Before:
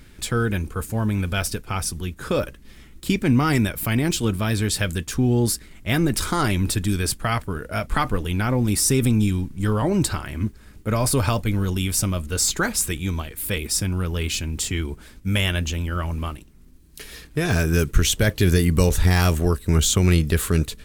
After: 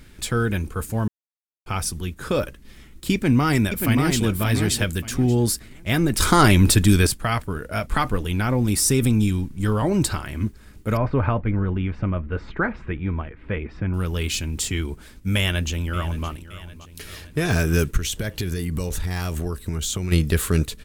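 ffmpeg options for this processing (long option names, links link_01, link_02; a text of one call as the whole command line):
ffmpeg -i in.wav -filter_complex "[0:a]asplit=2[link_01][link_02];[link_02]afade=type=in:start_time=3.13:duration=0.01,afade=type=out:start_time=4.25:duration=0.01,aecho=0:1:580|1160|1740:0.562341|0.140585|0.0351463[link_03];[link_01][link_03]amix=inputs=2:normalize=0,asettb=1/sr,asplit=3[link_04][link_05][link_06];[link_04]atrim=end=10.974[link_07];[link_05]atrim=start=10.97:end=13.94,asetpts=PTS-STARTPTS,afade=type=in:duration=0.004:curve=qsin,afade=type=out:start_time=2.966:duration=0.004:curve=qsin,lowpass=frequency=2100:width=0.5412,lowpass=frequency=2100:width=1.3066[link_08];[link_06]atrim=start=13.936[link_09];[link_07][link_08]acrossfade=duration=0.004:curve1=hsin:curve2=qsin[link_10];[link_10][link_09]acrossfade=duration=0.004:curve1=qsin:curve2=hsin,asplit=2[link_11][link_12];[link_12]afade=type=in:start_time=15.36:duration=0.01,afade=type=out:start_time=16.28:duration=0.01,aecho=0:1:570|1140|1710|2280|2850|3420:0.158489|0.0950936|0.0570562|0.0342337|0.0205402|0.0123241[link_13];[link_11][link_13]amix=inputs=2:normalize=0,asplit=3[link_14][link_15][link_16];[link_14]afade=type=out:start_time=17.96:duration=0.02[link_17];[link_15]acompressor=threshold=-22dB:ratio=6:attack=3.2:release=140:knee=1:detection=peak,afade=type=in:start_time=17.96:duration=0.02,afade=type=out:start_time=20.11:duration=0.02[link_18];[link_16]afade=type=in:start_time=20.11:duration=0.02[link_19];[link_17][link_18][link_19]amix=inputs=3:normalize=0,asplit=5[link_20][link_21][link_22][link_23][link_24];[link_20]atrim=end=1.08,asetpts=PTS-STARTPTS,afade=type=out:start_time=1.076:duration=0.004:curve=hsin[link_25];[link_21]atrim=start=1.08:end=1.66,asetpts=PTS-STARTPTS,volume=0[link_26];[link_22]atrim=start=1.66:end=6.202,asetpts=PTS-STARTPTS,afade=type=in:duration=0.004:curve=hsin[link_27];[link_23]atrim=start=6.198:end=7.072,asetpts=PTS-STARTPTS,volume=7dB[link_28];[link_24]atrim=start=7.068[link_29];[link_25][link_26][link_27]concat=n=3:v=0:a=1[link_30];[link_30][link_28]acrossfade=duration=0.004:curve1=hsin:curve2=hsin[link_31];[link_31][link_29]acrossfade=duration=0.004:curve1=hsin:curve2=hsin" out.wav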